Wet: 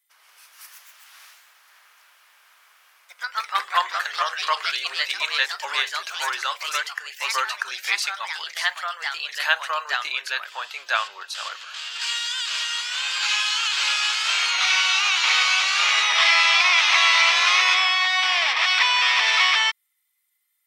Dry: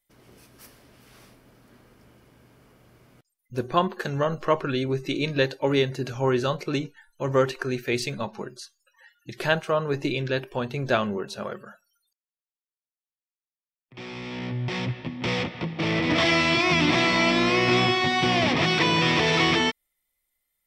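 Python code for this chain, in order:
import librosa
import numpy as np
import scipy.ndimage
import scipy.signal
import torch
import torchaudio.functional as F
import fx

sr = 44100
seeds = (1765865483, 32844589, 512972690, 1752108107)

y = scipy.signal.sosfilt(scipy.signal.butter(4, 1000.0, 'highpass', fs=sr, output='sos'), x)
y = fx.echo_pitch(y, sr, ms=191, semitones=2, count=3, db_per_echo=-3.0)
y = y * librosa.db_to_amplitude(5.5)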